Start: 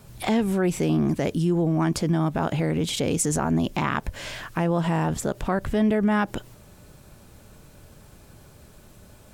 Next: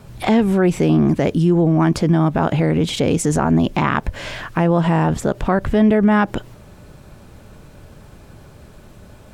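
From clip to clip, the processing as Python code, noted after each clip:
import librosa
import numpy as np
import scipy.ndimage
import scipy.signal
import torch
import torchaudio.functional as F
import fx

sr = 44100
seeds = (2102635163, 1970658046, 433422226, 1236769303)

y = fx.high_shelf(x, sr, hz=5100.0, db=-11.0)
y = y * librosa.db_to_amplitude(7.5)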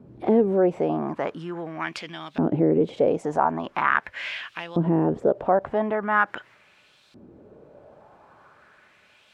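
y = fx.filter_lfo_bandpass(x, sr, shape='saw_up', hz=0.42, low_hz=270.0, high_hz=4000.0, q=2.3)
y = y * librosa.db_to_amplitude(3.0)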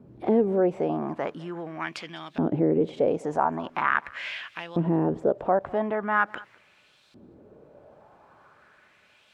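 y = x + 10.0 ** (-23.0 / 20.0) * np.pad(x, (int(201 * sr / 1000.0), 0))[:len(x)]
y = y * librosa.db_to_amplitude(-2.5)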